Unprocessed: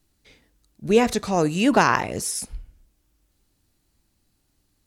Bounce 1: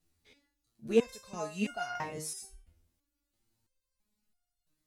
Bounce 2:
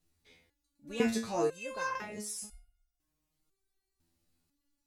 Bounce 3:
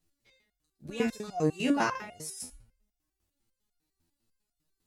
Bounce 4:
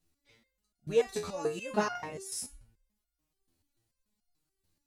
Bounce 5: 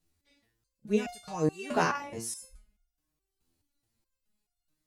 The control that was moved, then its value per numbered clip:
stepped resonator, rate: 3, 2, 10, 6.9, 4.7 Hz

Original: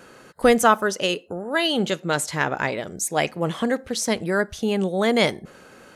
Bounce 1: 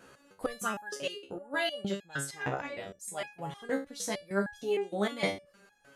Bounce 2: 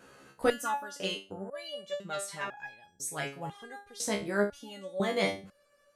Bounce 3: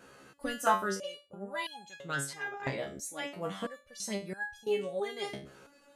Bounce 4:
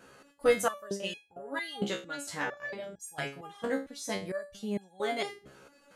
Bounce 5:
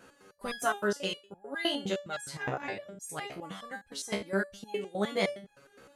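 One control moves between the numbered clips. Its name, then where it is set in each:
stepped resonator, rate: 6.5, 2, 3, 4.4, 9.7 Hz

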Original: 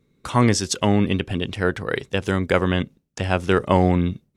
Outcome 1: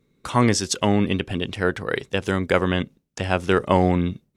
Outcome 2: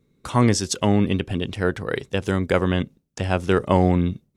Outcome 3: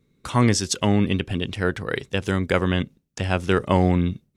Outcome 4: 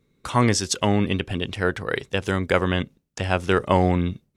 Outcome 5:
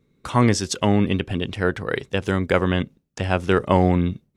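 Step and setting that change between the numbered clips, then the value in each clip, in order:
bell, frequency: 79, 2100, 720, 200, 11000 Hz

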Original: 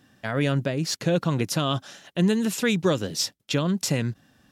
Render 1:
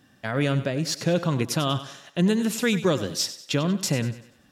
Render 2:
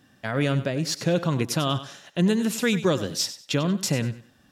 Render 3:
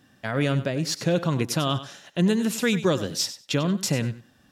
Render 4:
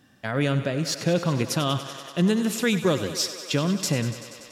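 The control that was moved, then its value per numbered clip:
thinning echo, feedback: 43, 26, 16, 84%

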